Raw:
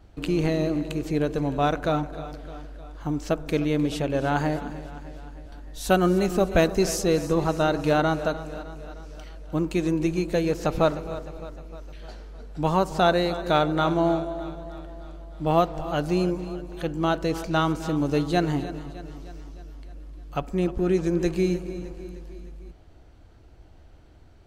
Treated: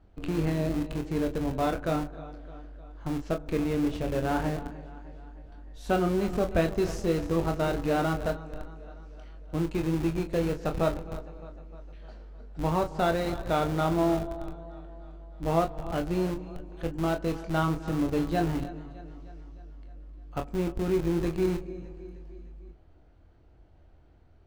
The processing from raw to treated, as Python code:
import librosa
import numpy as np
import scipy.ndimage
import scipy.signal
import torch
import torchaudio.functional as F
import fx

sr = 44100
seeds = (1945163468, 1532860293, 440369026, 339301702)

p1 = fx.lowpass(x, sr, hz=2100.0, slope=6)
p2 = fx.schmitt(p1, sr, flips_db=-24.0)
p3 = p1 + (p2 * librosa.db_to_amplitude(-3.5))
p4 = fx.room_early_taps(p3, sr, ms=(24, 38), db=(-7.0, -12.5))
y = p4 * librosa.db_to_amplitude(-7.0)